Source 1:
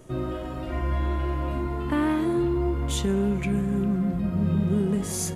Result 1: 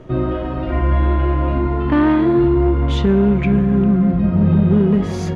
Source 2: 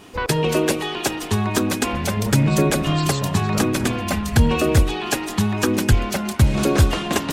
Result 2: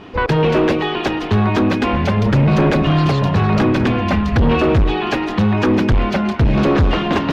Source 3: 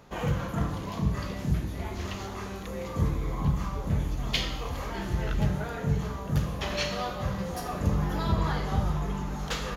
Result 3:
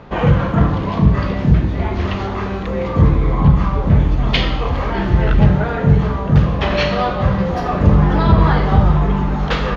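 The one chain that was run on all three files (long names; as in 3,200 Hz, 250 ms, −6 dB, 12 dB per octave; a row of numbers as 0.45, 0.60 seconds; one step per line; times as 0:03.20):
hard clipping −18 dBFS
high-frequency loss of the air 270 metres
loudness normalisation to −16 LKFS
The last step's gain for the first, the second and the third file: +10.5, +8.0, +15.5 decibels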